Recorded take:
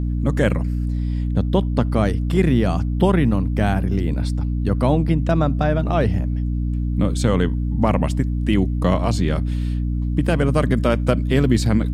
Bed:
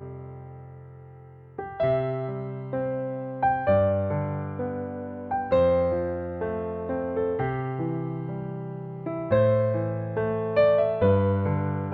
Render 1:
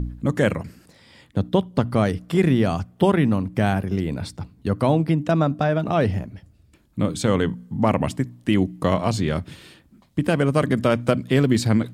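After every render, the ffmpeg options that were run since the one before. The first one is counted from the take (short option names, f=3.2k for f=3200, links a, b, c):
-af "bandreject=f=60:t=h:w=4,bandreject=f=120:t=h:w=4,bandreject=f=180:t=h:w=4,bandreject=f=240:t=h:w=4,bandreject=f=300:t=h:w=4"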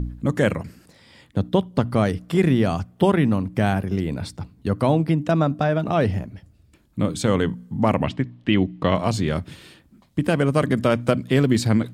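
-filter_complex "[0:a]asettb=1/sr,asplit=3[a][b][c];[a]atrim=end=8.044[d];[b]atrim=start=8.04:end=8.95,asetpts=PTS-STARTPTS,afade=t=in:d=0.004:c=qsin,afade=t=out:st=0.906:d=0.004:c=qsin,lowpass=f=3.2k:t=q:w=1.6[e];[c]atrim=start=8.946[f];[d][e]acrossfade=d=0.004:c1=hsin:c2=qsin[g];[g][f]acrossfade=d=0.004:c1=qsin:c2=hsin"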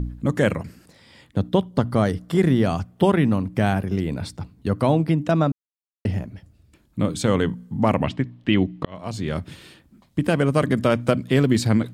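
-filter_complex "[0:a]asettb=1/sr,asplit=3[a][b][c];[a]atrim=end=1.704[d];[b]atrim=start=1.7:end=2.64,asetpts=PTS-STARTPTS,afade=t=in:d=0.004:c=qsin,afade=t=out:st=0.936:d=0.004:c=qsin,equalizer=f=2.5k:w=5.4:g=-8[e];[c]atrim=start=2.636[f];[d][e]acrossfade=d=0.004:c1=hsin:c2=qsin[g];[g][f]acrossfade=d=0.004:c1=qsin:c2=hsin,asplit=4[h][i][j][k];[h]atrim=end=5.52,asetpts=PTS-STARTPTS,afade=t=out:st=5.516:d=0.004:c=hsin[l];[i]atrim=start=5.52:end=6.05,asetpts=PTS-STARTPTS,volume=0[m];[j]atrim=start=6.05:end=8.85,asetpts=PTS-STARTPTS,afade=t=in:d=0.004:c=hsin,afade=t=out:st=2.796:d=0.004:c=hsin[n];[k]atrim=start=8.85,asetpts=PTS-STARTPTS,afade=t=in:d=0.64[o];[l][m][n][o]concat=n=4:v=0:a=1"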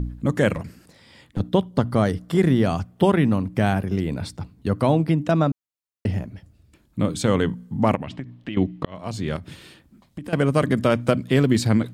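-filter_complex "[0:a]asettb=1/sr,asplit=3[a][b][c];[a]atrim=end=0.534[d];[b]atrim=start=0.53:end=1.4,asetpts=PTS-STARTPTS,afade=t=in:d=0.004:c=qsin,afade=t=out:st=0.866:d=0.004:c=qsin,aeval=exprs='clip(val(0),-1,0.0631)':c=same[e];[c]atrim=start=1.396[f];[d][e]acrossfade=d=0.004:c1=hsin:c2=qsin[g];[g][f]acrossfade=d=0.004:c1=qsin:c2=hsin,asettb=1/sr,asplit=3[h][i][j];[h]atrim=end=7.954[k];[i]atrim=start=7.95:end=8.57,asetpts=PTS-STARTPTS,afade=t=in:d=0.004:c=qsin,afade=t=out:st=0.616:d=0.004:c=qsin,acompressor=threshold=-27dB:ratio=6:attack=3.2:release=140:knee=1:detection=peak[l];[j]atrim=start=8.566[m];[k][l]acrossfade=d=0.004:c1=hsin:c2=qsin[n];[n][m]acrossfade=d=0.004:c1=qsin:c2=hsin,asettb=1/sr,asplit=3[o][p][q];[o]atrim=end=9.364[r];[p]atrim=start=9.36:end=10.33,asetpts=PTS-STARTPTS,afade=t=in:d=0.004:c=qsin,afade=t=out:st=0.966:d=0.004:c=qsin,acompressor=threshold=-30dB:ratio=6:attack=3.2:release=140:knee=1:detection=peak[s];[q]atrim=start=10.326[t];[r][s]acrossfade=d=0.004:c1=hsin:c2=qsin[u];[u][t]acrossfade=d=0.004:c1=qsin:c2=hsin"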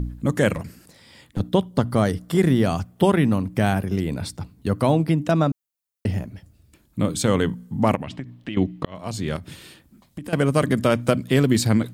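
-af "highshelf=f=7.3k:g=9.5"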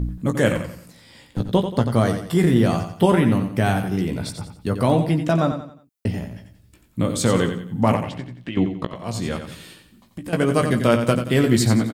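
-filter_complex "[0:a]asplit=2[a][b];[b]adelay=17,volume=-7dB[c];[a][c]amix=inputs=2:normalize=0,asplit=2[d][e];[e]aecho=0:1:89|178|267|356:0.376|0.139|0.0515|0.019[f];[d][f]amix=inputs=2:normalize=0"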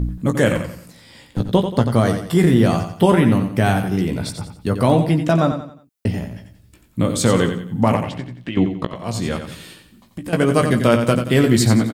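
-af "volume=3dB,alimiter=limit=-3dB:level=0:latency=1"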